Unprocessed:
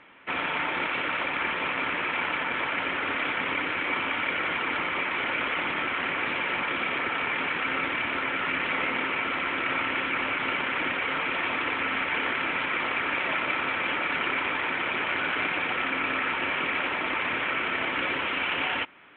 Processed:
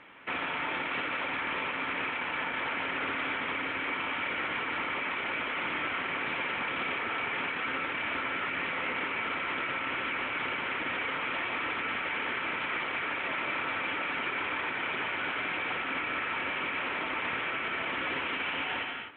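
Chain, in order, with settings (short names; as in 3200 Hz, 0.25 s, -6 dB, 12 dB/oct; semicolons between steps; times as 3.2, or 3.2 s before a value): non-linear reverb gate 0.28 s flat, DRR 7.5 dB; limiter -24 dBFS, peak gain reduction 10 dB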